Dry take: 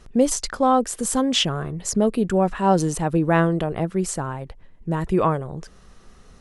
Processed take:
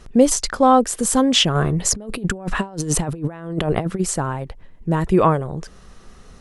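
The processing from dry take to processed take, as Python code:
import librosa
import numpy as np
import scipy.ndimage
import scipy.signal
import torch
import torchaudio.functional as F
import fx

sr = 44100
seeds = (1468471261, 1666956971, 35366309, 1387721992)

y = fx.over_compress(x, sr, threshold_db=-26.0, ratio=-0.5, at=(1.54, 3.99), fade=0.02)
y = y * librosa.db_to_amplitude(4.5)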